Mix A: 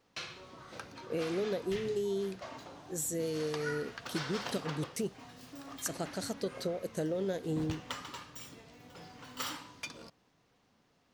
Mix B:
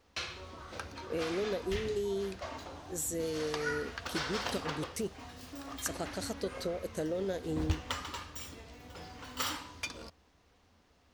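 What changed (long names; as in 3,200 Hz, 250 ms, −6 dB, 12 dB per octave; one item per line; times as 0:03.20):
background +3.5 dB
master: add low shelf with overshoot 100 Hz +7.5 dB, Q 3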